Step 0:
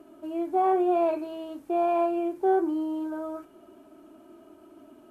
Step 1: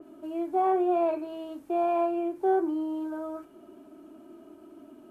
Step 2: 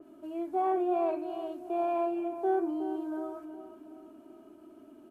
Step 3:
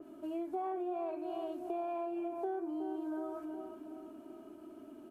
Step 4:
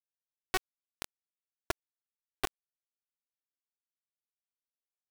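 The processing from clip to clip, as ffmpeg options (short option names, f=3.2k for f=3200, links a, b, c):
-filter_complex "[0:a]acrossover=split=230|290|1100[a][b][c][d];[b]acompressor=mode=upward:threshold=-43dB:ratio=2.5[e];[a][e][c][d]amix=inputs=4:normalize=0,adynamicequalizer=threshold=0.00631:dfrequency=2900:dqfactor=0.7:tfrequency=2900:tqfactor=0.7:attack=5:release=100:ratio=0.375:range=2.5:mode=cutabove:tftype=highshelf,volume=-1.5dB"
-filter_complex "[0:a]asplit=2[a][b];[b]adelay=367,lowpass=f=1.7k:p=1,volume=-10dB,asplit=2[c][d];[d]adelay=367,lowpass=f=1.7k:p=1,volume=0.48,asplit=2[e][f];[f]adelay=367,lowpass=f=1.7k:p=1,volume=0.48,asplit=2[g][h];[h]adelay=367,lowpass=f=1.7k:p=1,volume=0.48,asplit=2[i][j];[j]adelay=367,lowpass=f=1.7k:p=1,volume=0.48[k];[a][c][e][g][i][k]amix=inputs=6:normalize=0,volume=-4dB"
-af "acompressor=threshold=-37dB:ratio=6,volume=1.5dB"
-af "acrusher=bits=4:mix=0:aa=0.000001,volume=7dB"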